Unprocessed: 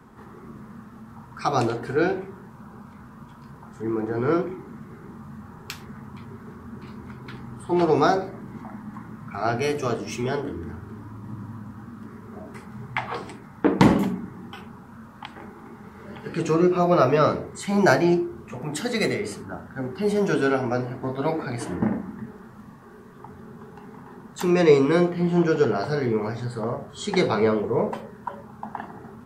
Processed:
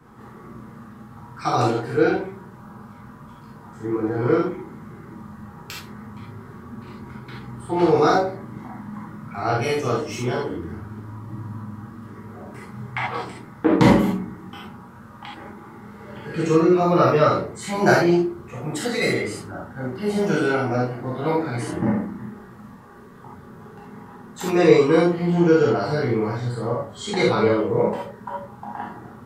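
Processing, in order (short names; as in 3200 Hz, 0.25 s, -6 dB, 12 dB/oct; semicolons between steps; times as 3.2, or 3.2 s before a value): non-linear reverb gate 0.1 s flat, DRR -5 dB; gain -3.5 dB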